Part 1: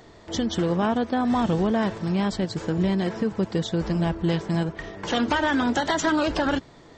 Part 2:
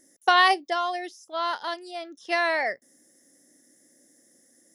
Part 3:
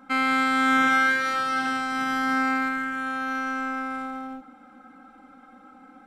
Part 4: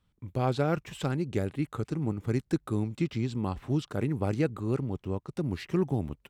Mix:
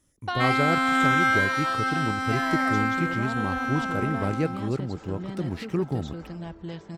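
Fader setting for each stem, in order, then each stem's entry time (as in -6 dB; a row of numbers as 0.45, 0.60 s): -13.0, -11.0, -1.0, +1.0 dB; 2.40, 0.00, 0.30, 0.00 s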